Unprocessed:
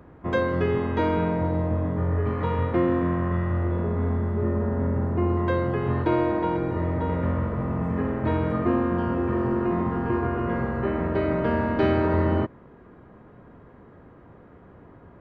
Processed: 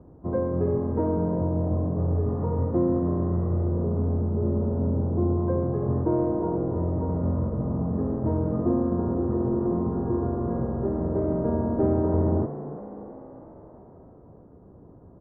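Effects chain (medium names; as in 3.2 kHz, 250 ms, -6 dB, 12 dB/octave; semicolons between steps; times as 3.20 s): Bessel low-pass 620 Hz, order 4; on a send: frequency-shifting echo 328 ms, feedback 58%, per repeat +59 Hz, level -14 dB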